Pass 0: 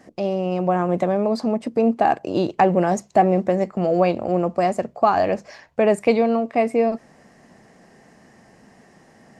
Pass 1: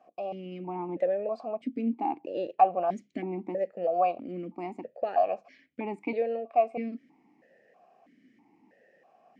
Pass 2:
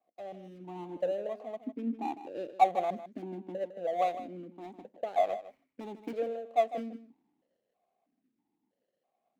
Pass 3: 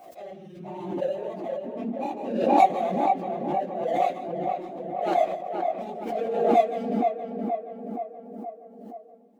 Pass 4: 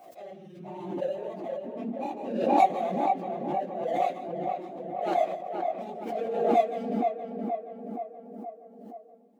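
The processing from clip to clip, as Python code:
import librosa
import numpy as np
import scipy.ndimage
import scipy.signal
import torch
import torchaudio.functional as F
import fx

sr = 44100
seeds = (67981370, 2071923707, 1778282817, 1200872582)

y1 = fx.vowel_held(x, sr, hz=3.1)
y2 = scipy.ndimage.median_filter(y1, 25, mode='constant')
y2 = y2 + 10.0 ** (-11.5 / 20.0) * np.pad(y2, (int(155 * sr / 1000.0), 0))[:len(y2)]
y2 = fx.band_widen(y2, sr, depth_pct=40)
y2 = F.gain(torch.from_numpy(y2), -5.0).numpy()
y3 = fx.phase_scramble(y2, sr, seeds[0], window_ms=50)
y3 = fx.echo_tape(y3, sr, ms=473, feedback_pct=68, wet_db=-3.5, lp_hz=1600.0, drive_db=7.0, wow_cents=19)
y3 = fx.pre_swell(y3, sr, db_per_s=48.0)
y3 = F.gain(torch.from_numpy(y3), 3.0).numpy()
y4 = scipy.signal.sosfilt(scipy.signal.butter(2, 65.0, 'highpass', fs=sr, output='sos'), y3)
y4 = F.gain(torch.from_numpy(y4), -3.0).numpy()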